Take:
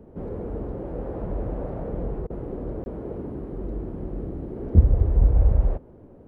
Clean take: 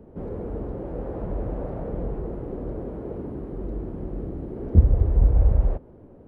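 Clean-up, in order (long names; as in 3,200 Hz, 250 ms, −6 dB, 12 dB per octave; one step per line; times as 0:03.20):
repair the gap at 0:02.84, 21 ms
repair the gap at 0:02.27, 29 ms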